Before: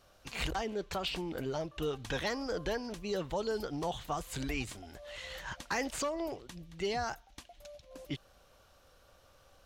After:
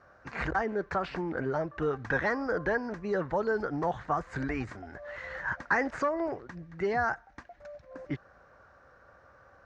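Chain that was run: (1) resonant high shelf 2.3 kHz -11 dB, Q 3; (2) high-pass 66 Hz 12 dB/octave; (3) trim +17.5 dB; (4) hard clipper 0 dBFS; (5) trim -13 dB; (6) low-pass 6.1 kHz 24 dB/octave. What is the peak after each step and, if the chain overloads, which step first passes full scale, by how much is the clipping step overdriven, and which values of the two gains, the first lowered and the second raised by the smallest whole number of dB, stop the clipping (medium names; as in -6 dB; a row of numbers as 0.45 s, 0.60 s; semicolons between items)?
-20.0 dBFS, -20.0 dBFS, -2.5 dBFS, -2.5 dBFS, -15.5 dBFS, -15.5 dBFS; nothing clips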